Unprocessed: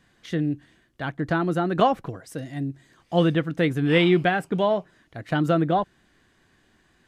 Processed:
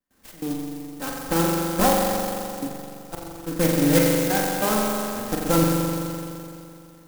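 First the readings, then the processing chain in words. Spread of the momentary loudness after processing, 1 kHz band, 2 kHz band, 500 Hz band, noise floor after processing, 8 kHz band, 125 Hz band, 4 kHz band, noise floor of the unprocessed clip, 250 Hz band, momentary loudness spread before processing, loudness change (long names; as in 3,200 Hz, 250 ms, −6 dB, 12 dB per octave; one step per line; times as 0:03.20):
18 LU, 0.0 dB, −2.0 dB, 0.0 dB, −48 dBFS, can't be measured, −1.0 dB, +2.0 dB, −63 dBFS, +0.5 dB, 15 LU, +1.0 dB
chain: lower of the sound and its delayed copy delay 3.8 ms
gate pattern ".xx.xx.." 143 BPM −24 dB
spring reverb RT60 2.7 s, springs 42 ms, chirp 50 ms, DRR −2.5 dB
converter with an unsteady clock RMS 0.098 ms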